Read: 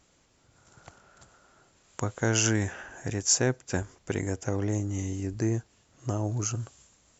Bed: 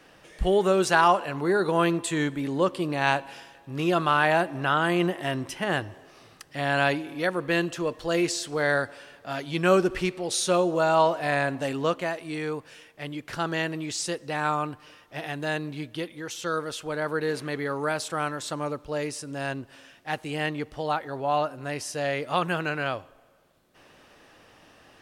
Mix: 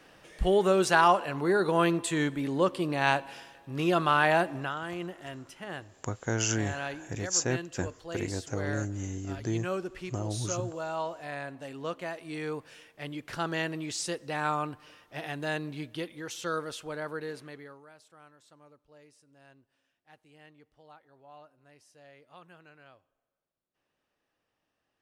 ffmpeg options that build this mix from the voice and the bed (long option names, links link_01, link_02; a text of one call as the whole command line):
ffmpeg -i stem1.wav -i stem2.wav -filter_complex "[0:a]adelay=4050,volume=-4dB[link_01];[1:a]volume=7.5dB,afade=type=out:start_time=4.53:duration=0.2:silence=0.281838,afade=type=in:start_time=11.69:duration=0.89:silence=0.334965,afade=type=out:start_time=16.49:duration=1.36:silence=0.0668344[link_02];[link_01][link_02]amix=inputs=2:normalize=0" out.wav